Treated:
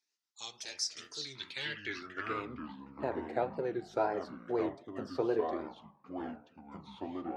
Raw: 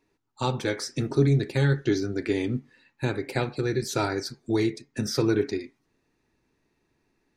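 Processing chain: wow and flutter 150 cents; echoes that change speed 92 ms, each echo -5 st, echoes 2, each echo -6 dB; band-pass sweep 5700 Hz -> 680 Hz, 1.11–2.82; gain +1.5 dB

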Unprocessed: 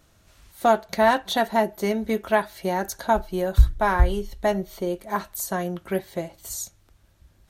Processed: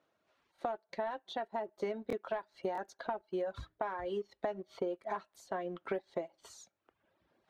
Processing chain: HPF 410 Hz 12 dB/oct; vocal rider within 4 dB 0.5 s; reverb removal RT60 0.87 s; sample leveller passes 1; compressor 12:1, threshold -30 dBFS, peak gain reduction 16.5 dB; LPF 3800 Hz 12 dB/oct; tilt shelf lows +5 dB, about 1200 Hz; stuck buffer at 0.54/2.08/2.73/6.72, samples 1024, times 1; gain -6 dB

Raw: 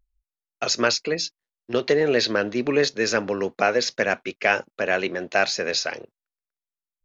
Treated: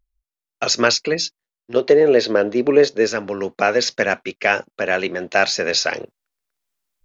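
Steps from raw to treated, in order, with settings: 1.76–3.07 bell 470 Hz +10 dB 2 oct; AGC gain up to 16 dB; gain -1 dB

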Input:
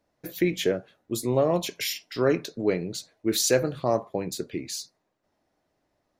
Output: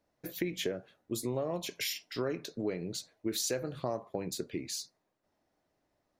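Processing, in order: compressor 6:1, threshold -26 dBFS, peak gain reduction 10 dB; gain -4 dB

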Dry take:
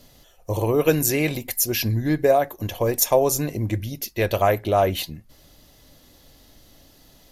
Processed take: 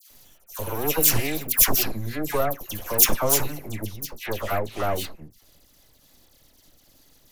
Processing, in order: bell 14000 Hz +14.5 dB 2.1 oct, from 3.86 s +6 dB; half-wave rectifier; dispersion lows, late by 0.107 s, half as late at 1700 Hz; gain -3 dB

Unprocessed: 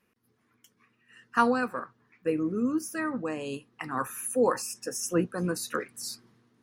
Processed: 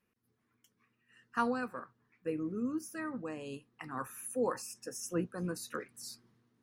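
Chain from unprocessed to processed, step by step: low shelf 150 Hz +5.5 dB; gain -9 dB

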